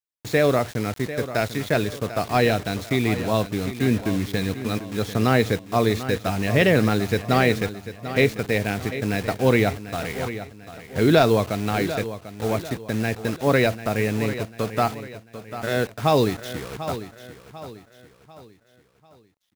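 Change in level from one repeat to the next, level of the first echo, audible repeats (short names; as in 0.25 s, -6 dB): -8.0 dB, -12.5 dB, 3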